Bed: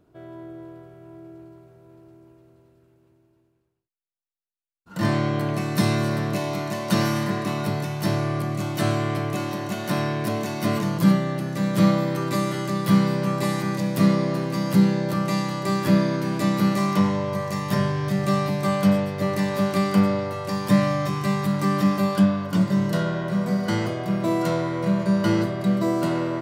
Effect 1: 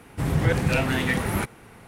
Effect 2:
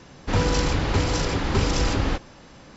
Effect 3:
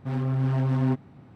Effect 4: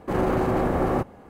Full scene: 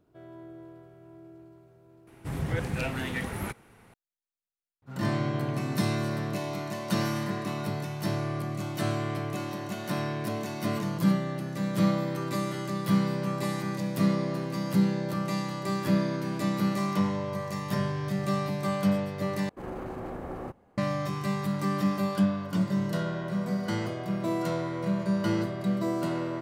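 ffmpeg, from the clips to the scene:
-filter_complex "[0:a]volume=-6.5dB,asplit=2[a][b];[a]atrim=end=19.494[c];[4:a]atrim=end=1.29,asetpts=PTS-STARTPTS,volume=-14.5dB[d];[b]atrim=start=20.776[e];[1:a]atrim=end=1.87,asetpts=PTS-STARTPTS,volume=-8.5dB,afade=t=in:d=0.004:c=hsin,afade=t=out:st=1.866:d=0.004:c=hsin,adelay=2070[f];[3:a]atrim=end=1.35,asetpts=PTS-STARTPTS,volume=-12.5dB,afade=t=in:d=0.004:c=hsin,afade=t=out:st=1.346:d=0.004:c=hsin,adelay=4820[g];[c][d]acrossfade=d=0.004:c1=hsin:c2=hsin[h];[h][e]acrossfade=d=0.004:c1=hsin:c2=hsin[i];[i][f][g]amix=inputs=3:normalize=0"

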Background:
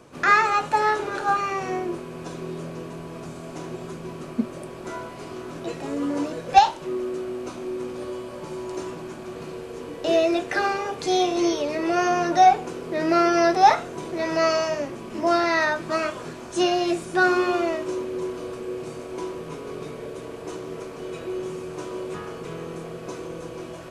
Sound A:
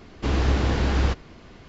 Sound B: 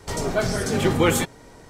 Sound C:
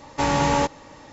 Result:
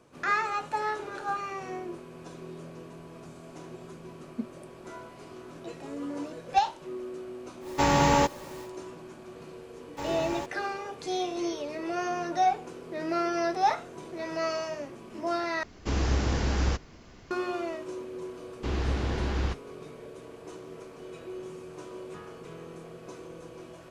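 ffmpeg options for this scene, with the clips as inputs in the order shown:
-filter_complex "[3:a]asplit=2[a][b];[1:a]asplit=2[c][d];[0:a]volume=-9.5dB[e];[a]acrusher=bits=7:mix=0:aa=0.000001[f];[b]aeval=exprs='val(0)*gte(abs(val(0)),0.0224)':c=same[g];[c]aexciter=amount=2.3:drive=5:freq=5.2k[h];[d]agate=range=-33dB:threshold=-35dB:ratio=3:release=100:detection=peak[i];[e]asplit=2[j][k];[j]atrim=end=15.634[l];[h]atrim=end=1.68,asetpts=PTS-STARTPTS,volume=-5dB[m];[k]atrim=start=17.306[n];[f]atrim=end=1.12,asetpts=PTS-STARTPTS,volume=-1.5dB,afade=t=in:d=0.1,afade=t=out:st=1.02:d=0.1,adelay=7600[o];[g]atrim=end=1.12,asetpts=PTS-STARTPTS,volume=-15dB,afade=t=in:d=0.004:c=hsin,afade=t=out:st=1.116:d=0.004:c=hsin,adelay=9790[p];[i]atrim=end=1.68,asetpts=PTS-STARTPTS,volume=-7.5dB,afade=t=in:d=0.004:c=hsin,afade=t=out:st=1.676:d=0.004:c=hsin,adelay=18400[q];[l][m]acrossfade=d=0.004:c1=hsin:c2=hsin[r];[r][n]acrossfade=d=0.004:c1=hsin:c2=hsin[s];[s][o][p][q]amix=inputs=4:normalize=0"

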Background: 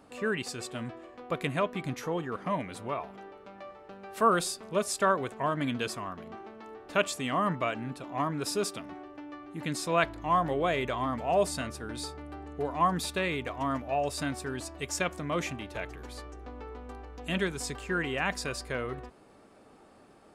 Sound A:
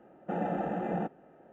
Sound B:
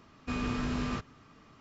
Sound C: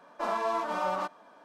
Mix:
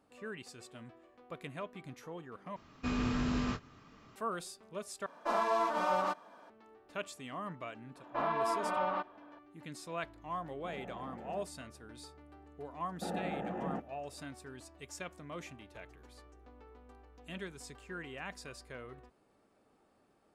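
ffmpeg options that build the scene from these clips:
-filter_complex "[3:a]asplit=2[a][b];[1:a]asplit=2[c][d];[0:a]volume=-13.5dB[e];[2:a]asplit=2[f][g];[g]adelay=24,volume=-10.5dB[h];[f][h]amix=inputs=2:normalize=0[i];[b]lowpass=f=3.5k:w=0.5412,lowpass=f=3.5k:w=1.3066[j];[e]asplit=3[k][l][m];[k]atrim=end=2.564[n];[i]atrim=end=1.6,asetpts=PTS-STARTPTS,volume=-1.5dB[o];[l]atrim=start=4.156:end=5.064[p];[a]atrim=end=1.44,asetpts=PTS-STARTPTS,volume=-1dB[q];[m]atrim=start=6.496[r];[j]atrim=end=1.44,asetpts=PTS-STARTPTS,volume=-3dB,afade=t=in:d=0.004:c=hsin,afade=t=out:st=1.436:d=0.004:c=hsin,adelay=7950[s];[c]atrim=end=1.52,asetpts=PTS-STARTPTS,volume=-16.5dB,afade=t=in:d=0.004:c=hsin,afade=t=out:st=1.516:d=0.004:c=hsin,adelay=10360[t];[d]atrim=end=1.52,asetpts=PTS-STARTPTS,volume=-6dB,afade=t=in:d=0.004:c=hsin,afade=t=out:st=1.516:d=0.004:c=hsin,adelay=12730[u];[n][o]acrossfade=d=0.004:c1=hsin:c2=hsin[v];[v][p]acrossfade=d=0.004:c1=hsin:c2=hsin[w];[w][q]acrossfade=d=0.004:c1=hsin:c2=hsin[x];[x][r]acrossfade=d=0.004:c1=hsin:c2=hsin[y];[y][s][t][u]amix=inputs=4:normalize=0"

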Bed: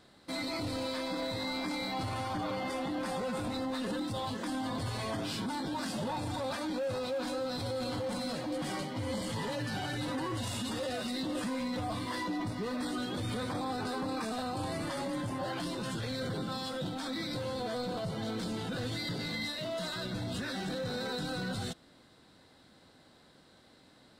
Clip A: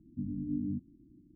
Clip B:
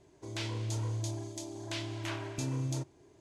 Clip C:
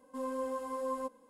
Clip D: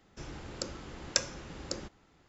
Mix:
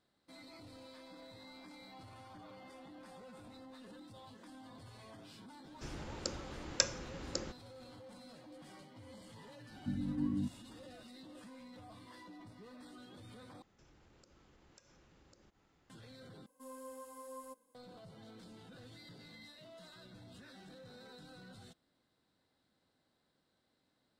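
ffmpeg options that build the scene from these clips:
-filter_complex "[4:a]asplit=2[a][b];[0:a]volume=-19dB[c];[b]acompressor=threshold=-58dB:ratio=3:attack=1.1:release=130:knee=1:detection=peak[d];[3:a]aemphasis=mode=production:type=75kf[e];[c]asplit=3[f][g][h];[f]atrim=end=13.624[i];[d]atrim=end=2.28,asetpts=PTS-STARTPTS,volume=-7.5dB[j];[g]atrim=start=15.896:end=16.464[k];[e]atrim=end=1.29,asetpts=PTS-STARTPTS,volume=-14dB[l];[h]atrim=start=17.746[m];[a]atrim=end=2.28,asetpts=PTS-STARTPTS,volume=-2dB,afade=t=in:d=0.004:c=hsin,afade=t=out:st=2.276:d=0.004:c=hsin,adelay=5640[n];[1:a]atrim=end=1.35,asetpts=PTS-STARTPTS,volume=-1dB,afade=t=in:d=0.004:c=hsin,afade=t=out:st=1.346:d=0.004:c=hsin,adelay=9690[o];[i][j]acrossfade=d=0.004:c1=hsin:c2=hsin[p];[p][k]acrossfade=d=0.004:c1=hsin:c2=hsin[q];[q][l]acrossfade=d=0.004:c1=hsin:c2=hsin[r];[r][m]acrossfade=d=0.004:c1=hsin:c2=hsin[s];[s][n][o]amix=inputs=3:normalize=0"

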